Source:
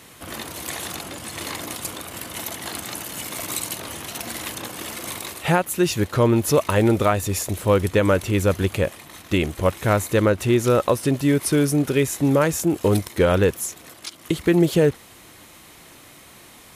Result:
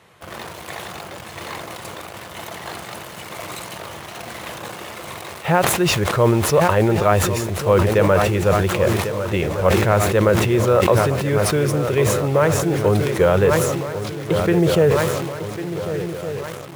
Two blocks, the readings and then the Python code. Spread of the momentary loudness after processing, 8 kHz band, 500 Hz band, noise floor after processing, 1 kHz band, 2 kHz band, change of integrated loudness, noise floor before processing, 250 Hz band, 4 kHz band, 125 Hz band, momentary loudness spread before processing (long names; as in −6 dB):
17 LU, 0.0 dB, +4.0 dB, −36 dBFS, +5.5 dB, +3.5 dB, +4.0 dB, −47 dBFS, −0.5 dB, +2.5 dB, +3.5 dB, 13 LU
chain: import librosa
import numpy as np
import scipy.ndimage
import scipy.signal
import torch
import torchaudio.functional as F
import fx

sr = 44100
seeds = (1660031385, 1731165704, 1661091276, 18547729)

p1 = fx.lowpass(x, sr, hz=1400.0, slope=6)
p2 = fx.peak_eq(p1, sr, hz=270.0, db=-14.5, octaves=0.48)
p3 = fx.echo_swing(p2, sr, ms=1465, ratio=3, feedback_pct=59, wet_db=-11.5)
p4 = fx.quant_dither(p3, sr, seeds[0], bits=6, dither='none')
p5 = p3 + F.gain(torch.from_numpy(p4), -4.0).numpy()
p6 = fx.highpass(p5, sr, hz=120.0, slope=6)
y = fx.sustainer(p6, sr, db_per_s=32.0)